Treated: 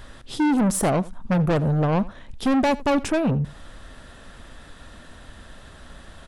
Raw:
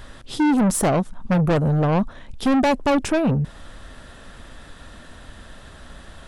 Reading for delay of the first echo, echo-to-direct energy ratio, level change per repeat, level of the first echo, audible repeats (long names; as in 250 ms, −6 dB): 85 ms, −20.5 dB, repeats not evenly spaced, −20.5 dB, 1